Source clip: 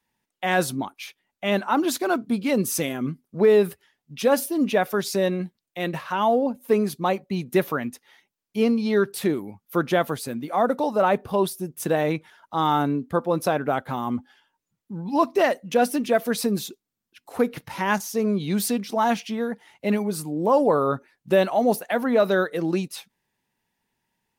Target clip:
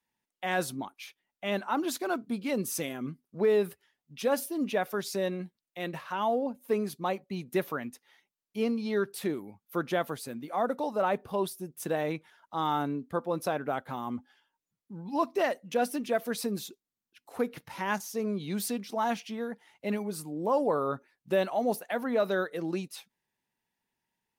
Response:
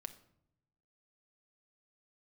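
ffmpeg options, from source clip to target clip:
-af "lowshelf=frequency=170:gain=-4,volume=-7.5dB"

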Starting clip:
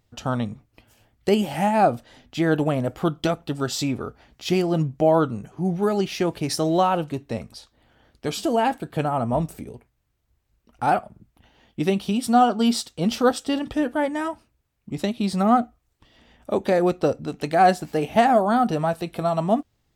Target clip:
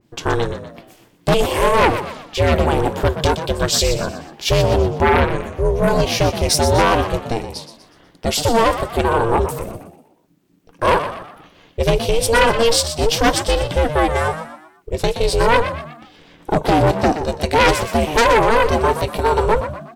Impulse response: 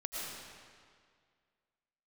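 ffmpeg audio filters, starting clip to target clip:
-filter_complex "[0:a]aeval=exprs='val(0)*sin(2*PI*230*n/s)':channel_layout=same,aeval=exprs='0.473*sin(PI/2*2.82*val(0)/0.473)':channel_layout=same,asplit=5[link_01][link_02][link_03][link_04][link_05];[link_02]adelay=122,afreqshift=73,volume=-10.5dB[link_06];[link_03]adelay=244,afreqshift=146,volume=-18dB[link_07];[link_04]adelay=366,afreqshift=219,volume=-25.6dB[link_08];[link_05]adelay=488,afreqshift=292,volume=-33.1dB[link_09];[link_01][link_06][link_07][link_08][link_09]amix=inputs=5:normalize=0,adynamicequalizer=threshold=0.0398:dfrequency=2500:dqfactor=0.7:tfrequency=2500:tqfactor=0.7:attack=5:release=100:ratio=0.375:range=2:mode=boostabove:tftype=highshelf,volume=-2dB"

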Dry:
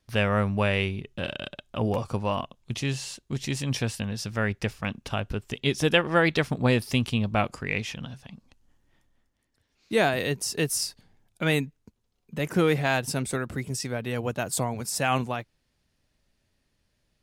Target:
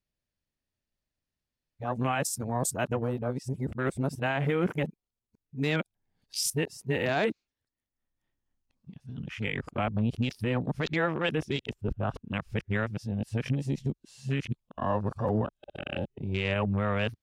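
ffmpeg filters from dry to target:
ffmpeg -i in.wav -af "areverse,afwtdn=0.02,alimiter=limit=-18dB:level=0:latency=1:release=43" out.wav

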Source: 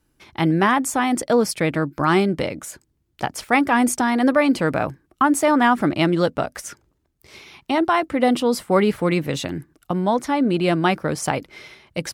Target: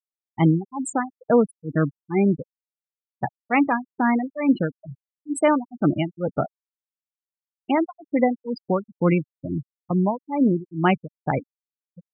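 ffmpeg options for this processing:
ffmpeg -i in.wav -af "equalizer=frequency=150:width_type=o:width=1.1:gain=4.5,tremolo=f=2.2:d=0.98,afftfilt=real='re*gte(hypot(re,im),0.126)':imag='im*gte(hypot(re,im),0.126)':win_size=1024:overlap=0.75" out.wav

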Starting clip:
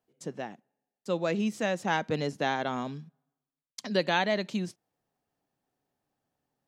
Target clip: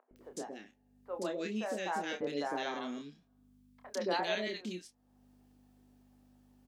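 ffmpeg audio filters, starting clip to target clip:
ffmpeg -i in.wav -filter_complex "[0:a]aeval=exprs='val(0)+0.001*(sin(2*PI*50*n/s)+sin(2*PI*2*50*n/s)/2+sin(2*PI*3*50*n/s)/3+sin(2*PI*4*50*n/s)/4+sin(2*PI*5*50*n/s)/5)':channel_layout=same,acompressor=mode=upward:threshold=-34dB:ratio=2.5,lowshelf=frequency=200:width_type=q:width=1.5:gain=-13,asplit=2[link_01][link_02];[link_02]adelay=28,volume=-7dB[link_03];[link_01][link_03]amix=inputs=2:normalize=0,acrossover=split=530|1600[link_04][link_05][link_06];[link_04]adelay=110[link_07];[link_06]adelay=160[link_08];[link_07][link_05][link_08]amix=inputs=3:normalize=0,volume=-6dB" out.wav

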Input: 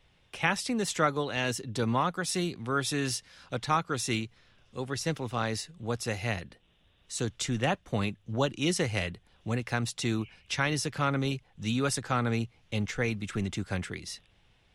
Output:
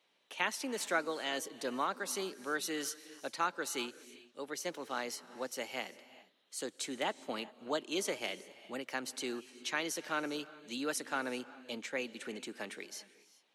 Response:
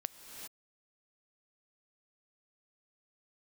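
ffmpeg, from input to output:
-filter_complex "[0:a]highpass=frequency=250:width=0.5412,highpass=frequency=250:width=1.3066,asetrate=48000,aresample=44100,asplit=2[link_01][link_02];[1:a]atrim=start_sample=2205[link_03];[link_02][link_03]afir=irnorm=-1:irlink=0,volume=-7.5dB[link_04];[link_01][link_04]amix=inputs=2:normalize=0,volume=-8.5dB"

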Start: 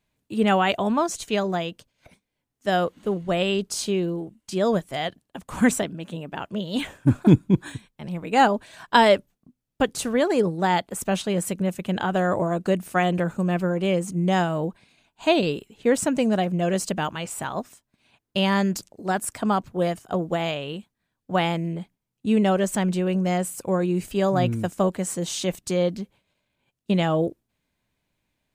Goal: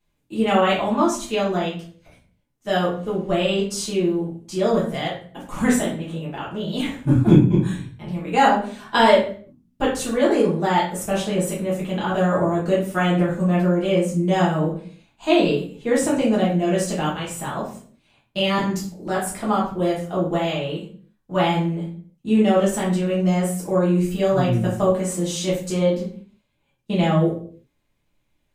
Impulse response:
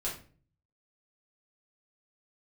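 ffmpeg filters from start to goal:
-filter_complex "[0:a]asettb=1/sr,asplit=3[link_01][link_02][link_03];[link_01]atrim=end=18.584[link_04];[link_02]atrim=start=18.58:end=19.07,asetpts=PTS-STARTPTS,afade=type=in:duration=0.004:curve=qsin,afade=type=out:start_time=0.486:duration=0.004:curve=qsin,acrossover=split=260[link_05][link_06];[link_06]acompressor=threshold=-28dB:ratio=6[link_07];[link_05][link_07]amix=inputs=2:normalize=0[link_08];[link_03]atrim=start=19.066[link_09];[link_04][link_08]acrossfade=duration=0.004:curve1=hsin:curve2=qsin[link_10];[link_10][link_09]acrossfade=duration=0.004:curve1=qsin:curve2=hsin[link_11];[1:a]atrim=start_sample=2205,afade=type=out:start_time=0.36:duration=0.01,atrim=end_sample=16317,asetrate=36162,aresample=44100[link_12];[link_11][link_12]afir=irnorm=-1:irlink=0,volume=-2.5dB"

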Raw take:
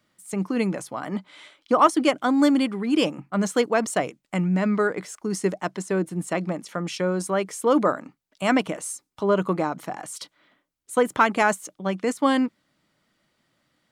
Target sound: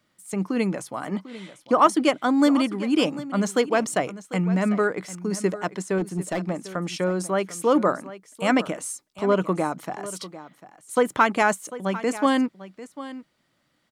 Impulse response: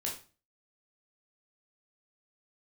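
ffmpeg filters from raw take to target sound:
-filter_complex "[0:a]asettb=1/sr,asplit=3[link_01][link_02][link_03];[link_01]atrim=end=5.984[link_04];[link_02]atrim=start=5.98:end=6.5,asetpts=PTS-STARTPTS,afade=type=in:duration=0.004:curve=qsin,afade=type=out:start_time=0.516:duration=0.004:curve=qsin,asoftclip=type=hard:threshold=-20.5dB[link_05];[link_03]atrim=start=6.496[link_06];[link_04][link_05]acrossfade=duration=0.004:curve1=hsin:curve2=qsin[link_07];[link_07][link_06]acrossfade=duration=0.004:curve1=qsin:curve2=hsin,aecho=1:1:747:0.168"

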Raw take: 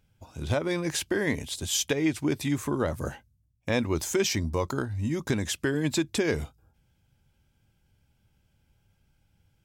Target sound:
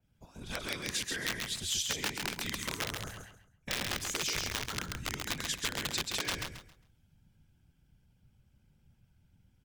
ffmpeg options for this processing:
ffmpeg -i in.wav -filter_complex "[0:a]afftfilt=real='hypot(re,im)*cos(2*PI*random(0))':imag='hypot(re,im)*sin(2*PI*random(1))':win_size=512:overlap=0.75,acrossover=split=190[link_01][link_02];[link_01]dynaudnorm=framelen=450:gausssize=3:maxgain=7.5dB[link_03];[link_03][link_02]amix=inputs=2:normalize=0,aeval=exprs='(mod(12.6*val(0)+1,2)-1)/12.6':channel_layout=same,acrossover=split=1100|6300[link_04][link_05][link_06];[link_04]acompressor=threshold=-44dB:ratio=4[link_07];[link_05]acompressor=threshold=-37dB:ratio=4[link_08];[link_06]acompressor=threshold=-49dB:ratio=4[link_09];[link_07][link_08][link_09]amix=inputs=3:normalize=0,asplit=2[link_10][link_11];[link_11]aecho=0:1:135|270|405|540:0.631|0.17|0.046|0.0124[link_12];[link_10][link_12]amix=inputs=2:normalize=0,adynamicequalizer=threshold=0.00251:dfrequency=2000:dqfactor=0.7:tfrequency=2000:tqfactor=0.7:attack=5:release=100:ratio=0.375:range=3:mode=boostabove:tftype=highshelf" out.wav

